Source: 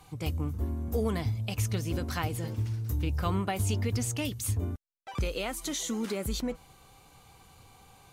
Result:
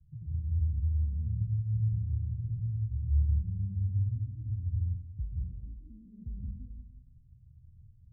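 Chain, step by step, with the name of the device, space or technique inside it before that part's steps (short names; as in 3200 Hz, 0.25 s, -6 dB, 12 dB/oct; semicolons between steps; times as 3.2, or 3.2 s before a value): club heard from the street (limiter -27.5 dBFS, peak gain reduction 9.5 dB; LPF 130 Hz 24 dB/oct; reverb RT60 1.0 s, pre-delay 0.118 s, DRR -5 dB)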